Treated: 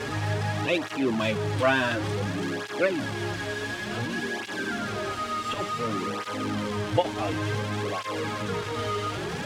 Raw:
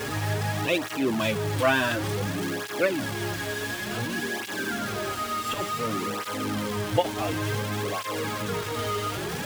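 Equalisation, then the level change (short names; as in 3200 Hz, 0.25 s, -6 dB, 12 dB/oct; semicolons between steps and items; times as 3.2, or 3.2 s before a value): air absorption 60 m; 0.0 dB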